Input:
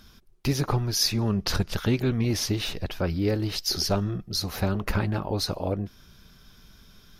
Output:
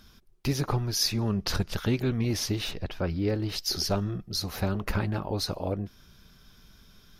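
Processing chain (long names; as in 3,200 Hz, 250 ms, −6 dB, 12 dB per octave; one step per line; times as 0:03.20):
0:02.71–0:03.49: high-shelf EQ 7,000 Hz −11.5 dB
level −2.5 dB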